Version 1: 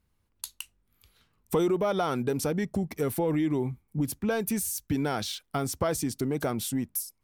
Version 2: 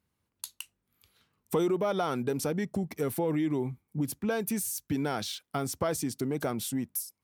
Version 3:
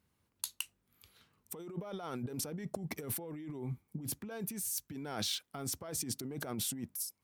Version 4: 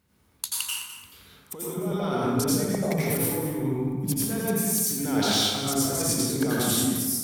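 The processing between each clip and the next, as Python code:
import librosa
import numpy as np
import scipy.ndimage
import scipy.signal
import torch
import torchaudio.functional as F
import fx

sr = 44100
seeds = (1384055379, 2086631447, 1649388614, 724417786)

y1 = scipy.signal.sosfilt(scipy.signal.butter(2, 98.0, 'highpass', fs=sr, output='sos'), x)
y1 = y1 * librosa.db_to_amplitude(-2.0)
y2 = fx.over_compress(y1, sr, threshold_db=-37.0, ratio=-1.0)
y2 = y2 * librosa.db_to_amplitude(-3.5)
y3 = y2 + 10.0 ** (-12.5 / 20.0) * np.pad(y2, (int(209 * sr / 1000.0), 0))[:len(y2)]
y3 = fx.rev_plate(y3, sr, seeds[0], rt60_s=1.3, hf_ratio=0.55, predelay_ms=75, drr_db=-7.0)
y3 = y3 * librosa.db_to_amplitude(6.5)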